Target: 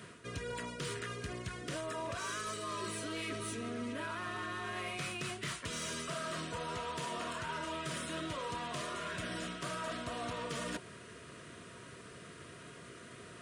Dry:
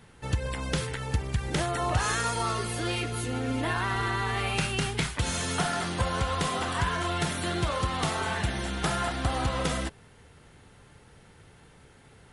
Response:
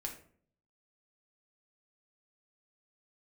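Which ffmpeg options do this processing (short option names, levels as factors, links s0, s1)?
-af "highpass=180,areverse,acompressor=threshold=0.00708:ratio=5,areverse,asoftclip=type=tanh:threshold=0.0133,asuperstop=centerf=890:order=20:qfactor=4.4,asetrate=40517,aresample=44100,volume=2"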